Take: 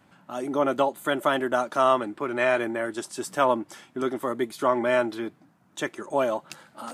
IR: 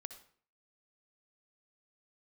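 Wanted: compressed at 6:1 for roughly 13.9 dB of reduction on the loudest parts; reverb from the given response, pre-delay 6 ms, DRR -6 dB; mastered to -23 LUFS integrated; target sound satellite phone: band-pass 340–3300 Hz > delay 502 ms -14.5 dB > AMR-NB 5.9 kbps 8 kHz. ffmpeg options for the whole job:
-filter_complex "[0:a]acompressor=threshold=0.0251:ratio=6,asplit=2[s0][s1];[1:a]atrim=start_sample=2205,adelay=6[s2];[s1][s2]afir=irnorm=-1:irlink=0,volume=3.35[s3];[s0][s3]amix=inputs=2:normalize=0,highpass=340,lowpass=3300,aecho=1:1:502:0.188,volume=3.16" -ar 8000 -c:a libopencore_amrnb -b:a 5900

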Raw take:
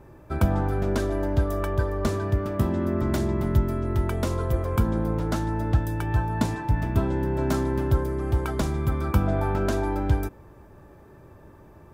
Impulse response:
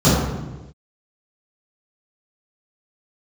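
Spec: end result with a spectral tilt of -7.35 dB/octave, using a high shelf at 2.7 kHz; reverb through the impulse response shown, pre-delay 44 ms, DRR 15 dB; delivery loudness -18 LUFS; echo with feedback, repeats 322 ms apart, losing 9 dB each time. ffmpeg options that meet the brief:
-filter_complex "[0:a]highshelf=f=2700:g=3,aecho=1:1:322|644|966|1288:0.355|0.124|0.0435|0.0152,asplit=2[s0][s1];[1:a]atrim=start_sample=2205,adelay=44[s2];[s1][s2]afir=irnorm=-1:irlink=0,volume=0.0106[s3];[s0][s3]amix=inputs=2:normalize=0,volume=1.68"

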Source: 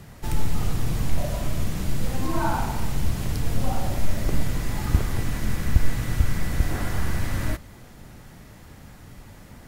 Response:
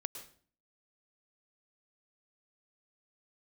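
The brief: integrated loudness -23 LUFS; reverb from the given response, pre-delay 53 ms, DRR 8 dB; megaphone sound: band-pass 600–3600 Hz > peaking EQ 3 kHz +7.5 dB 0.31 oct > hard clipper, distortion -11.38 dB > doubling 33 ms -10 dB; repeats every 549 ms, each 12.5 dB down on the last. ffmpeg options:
-filter_complex "[0:a]aecho=1:1:549|1098|1647:0.237|0.0569|0.0137,asplit=2[s0][s1];[1:a]atrim=start_sample=2205,adelay=53[s2];[s1][s2]afir=irnorm=-1:irlink=0,volume=0.447[s3];[s0][s3]amix=inputs=2:normalize=0,highpass=600,lowpass=3600,equalizer=f=3000:t=o:w=0.31:g=7.5,asoftclip=type=hard:threshold=0.0335,asplit=2[s4][s5];[s5]adelay=33,volume=0.316[s6];[s4][s6]amix=inputs=2:normalize=0,volume=4.47"

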